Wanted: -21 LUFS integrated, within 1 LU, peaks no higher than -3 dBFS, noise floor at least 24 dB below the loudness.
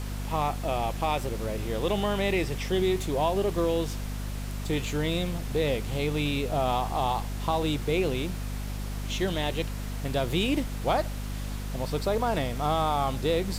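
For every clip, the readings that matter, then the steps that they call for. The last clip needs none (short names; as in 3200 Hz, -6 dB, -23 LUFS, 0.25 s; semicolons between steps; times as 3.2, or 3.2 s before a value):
hum 50 Hz; harmonics up to 250 Hz; hum level -31 dBFS; noise floor -34 dBFS; noise floor target -53 dBFS; loudness -29.0 LUFS; peak -14.0 dBFS; loudness target -21.0 LUFS
-> de-hum 50 Hz, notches 5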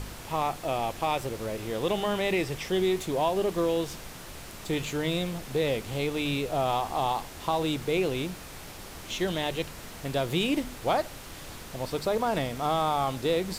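hum none; noise floor -43 dBFS; noise floor target -53 dBFS
-> noise print and reduce 10 dB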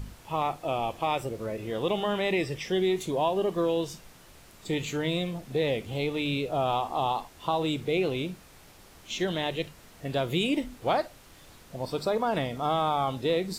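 noise floor -53 dBFS; noise floor target -54 dBFS
-> noise print and reduce 6 dB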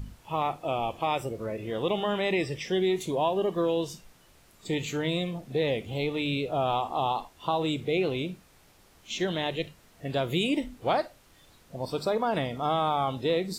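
noise floor -59 dBFS; loudness -29.5 LUFS; peak -14.5 dBFS; loudness target -21.0 LUFS
-> gain +8.5 dB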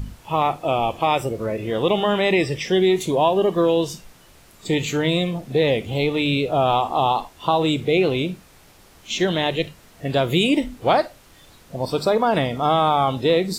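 loudness -21.0 LUFS; peak -6.0 dBFS; noise floor -50 dBFS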